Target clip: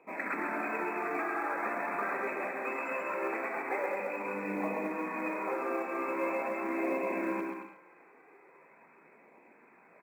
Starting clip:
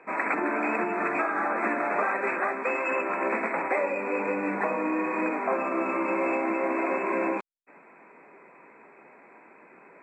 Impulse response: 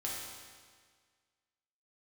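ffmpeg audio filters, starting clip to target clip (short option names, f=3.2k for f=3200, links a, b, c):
-filter_complex "[0:a]flanger=delay=0.3:depth=2.3:regen=-20:speed=0.43:shape=sinusoidal,aecho=1:1:130|221|284.7|329.3|360.5:0.631|0.398|0.251|0.158|0.1,asplit=2[a][b];[1:a]atrim=start_sample=2205,asetrate=38808,aresample=44100[c];[b][c]afir=irnorm=-1:irlink=0,volume=-15dB[d];[a][d]amix=inputs=2:normalize=0,acrusher=bits=8:mode=log:mix=0:aa=0.000001,volume=-6.5dB"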